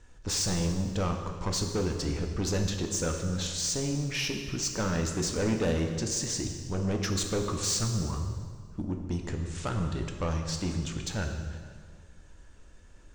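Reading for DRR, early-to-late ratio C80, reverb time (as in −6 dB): 3.0 dB, 7.0 dB, 1.9 s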